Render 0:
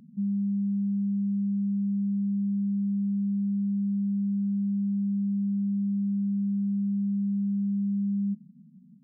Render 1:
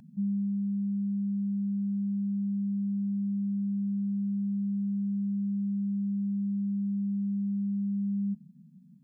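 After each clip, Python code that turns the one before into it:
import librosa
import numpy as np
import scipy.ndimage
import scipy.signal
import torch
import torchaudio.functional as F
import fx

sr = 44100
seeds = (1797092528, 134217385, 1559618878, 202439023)

y = fx.peak_eq(x, sr, hz=240.0, db=-7.0, octaves=1.4)
y = y + 0.65 * np.pad(y, (int(1.2 * sr / 1000.0), 0))[:len(y)]
y = fx.rider(y, sr, range_db=10, speed_s=0.5)
y = y * 10.0 ** (1.5 / 20.0)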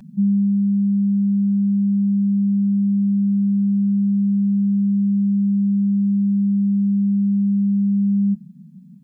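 y = x + 0.97 * np.pad(x, (int(5.2 * sr / 1000.0), 0))[:len(x)]
y = y * 10.0 ** (6.5 / 20.0)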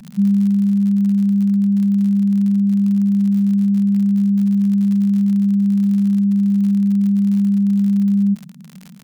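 y = fx.dmg_crackle(x, sr, seeds[0], per_s=75.0, level_db=-29.0)
y = y * 10.0 ** (2.5 / 20.0)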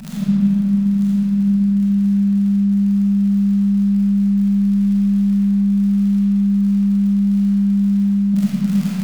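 y = fx.over_compress(x, sr, threshold_db=-19.0, ratio=-0.5)
y = y + 10.0 ** (-8.5 / 20.0) * np.pad(y, (int(944 * sr / 1000.0), 0))[:len(y)]
y = fx.rev_freeverb(y, sr, rt60_s=4.2, hf_ratio=0.4, predelay_ms=0, drr_db=-9.0)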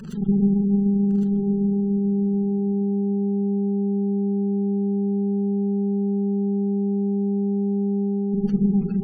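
y = fx.lower_of_two(x, sr, delay_ms=0.65)
y = fx.spec_gate(y, sr, threshold_db=-30, keep='strong')
y = y + 10.0 ** (-8.0 / 20.0) * np.pad(y, (int(1108 * sr / 1000.0), 0))[:len(y)]
y = y * 10.0 ** (-3.0 / 20.0)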